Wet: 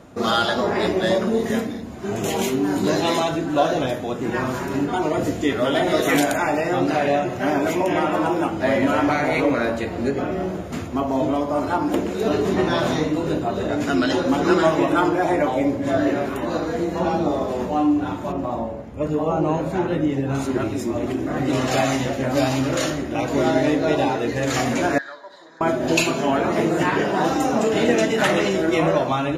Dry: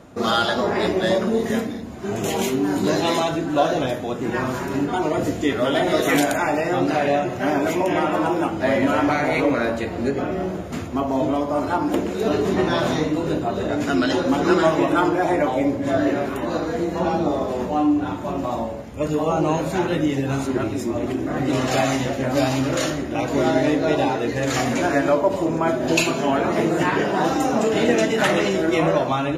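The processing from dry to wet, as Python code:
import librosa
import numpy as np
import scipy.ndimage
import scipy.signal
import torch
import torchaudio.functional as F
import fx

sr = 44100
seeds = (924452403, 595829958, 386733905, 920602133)

y = fx.high_shelf(x, sr, hz=2400.0, db=-11.0, at=(18.32, 20.35))
y = fx.double_bandpass(y, sr, hz=2600.0, octaves=1.2, at=(24.98, 25.61))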